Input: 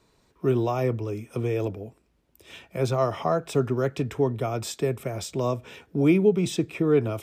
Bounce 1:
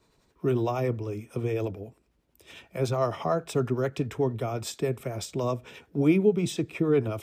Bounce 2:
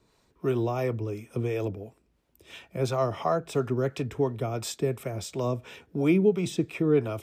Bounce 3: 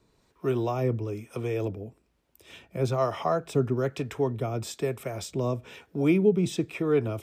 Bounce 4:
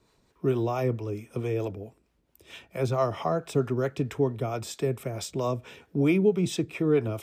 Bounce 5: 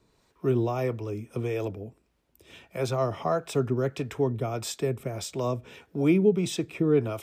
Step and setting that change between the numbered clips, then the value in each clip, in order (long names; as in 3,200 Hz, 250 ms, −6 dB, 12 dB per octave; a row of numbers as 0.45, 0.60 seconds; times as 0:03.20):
two-band tremolo in antiphase, speed: 11, 2.9, 1.1, 4.5, 1.6 Hertz